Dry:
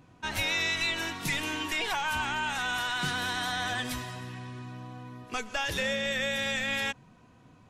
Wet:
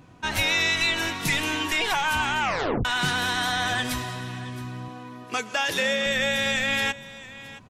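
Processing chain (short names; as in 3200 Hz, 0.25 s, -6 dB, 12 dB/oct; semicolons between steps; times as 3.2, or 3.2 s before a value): 4.88–6.06 HPF 200 Hz 12 dB/oct; echo 0.669 s -17.5 dB; 2.4 tape stop 0.45 s; gain +6 dB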